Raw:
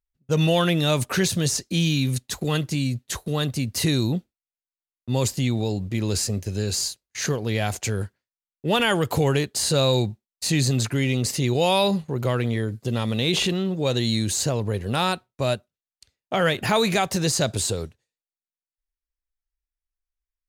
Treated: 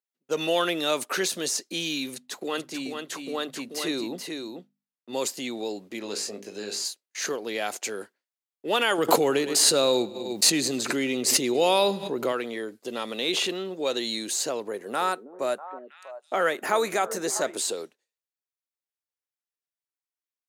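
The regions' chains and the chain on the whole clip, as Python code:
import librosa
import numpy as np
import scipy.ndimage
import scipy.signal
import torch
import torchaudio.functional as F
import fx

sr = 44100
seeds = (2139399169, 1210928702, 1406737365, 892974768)

y = fx.chain(x, sr, fx.high_shelf(hz=4500.0, db=-7.0),
    fx.hum_notches(base_hz=50, count=5),
    fx.echo_single(ms=435, db=-5.5), at=(2.14, 5.13))
y = fx.chain(y, sr, fx.high_shelf(hz=7500.0, db=-11.0),
    fx.hum_notches(base_hz=50, count=10),
    fx.doubler(ms=20.0, db=-5.0), at=(5.99, 6.85))
y = fx.chain(y, sr, fx.low_shelf(hz=270.0, db=9.5),
    fx.echo_feedback(ms=103, feedback_pct=45, wet_db=-19.5),
    fx.pre_swell(db_per_s=28.0), at=(8.98, 12.32))
y = fx.chain(y, sr, fx.band_shelf(hz=3600.0, db=-8.0, octaves=1.3),
    fx.echo_stepped(ms=322, hz=320.0, octaves=1.4, feedback_pct=70, wet_db=-8), at=(14.68, 17.57))
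y = scipy.signal.sosfilt(scipy.signal.butter(4, 290.0, 'highpass', fs=sr, output='sos'), y)
y = fx.dynamic_eq(y, sr, hz=1300.0, q=6.2, threshold_db=-45.0, ratio=4.0, max_db=4)
y = y * librosa.db_to_amplitude(-2.5)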